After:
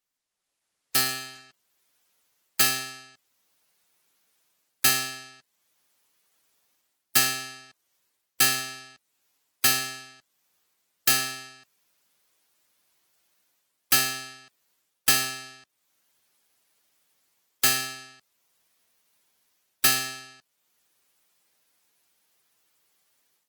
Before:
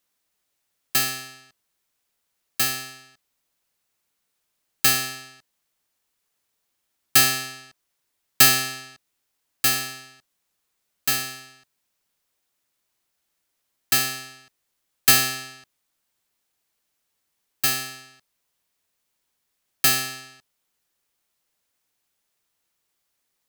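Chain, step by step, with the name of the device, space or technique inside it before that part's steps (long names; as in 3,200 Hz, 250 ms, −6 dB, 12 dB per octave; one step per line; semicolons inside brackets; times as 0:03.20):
noise-suppressed video call (high-pass filter 140 Hz 6 dB per octave; gate on every frequency bin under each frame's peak −25 dB strong; automatic gain control gain up to 14 dB; level −7.5 dB; Opus 16 kbit/s 48,000 Hz)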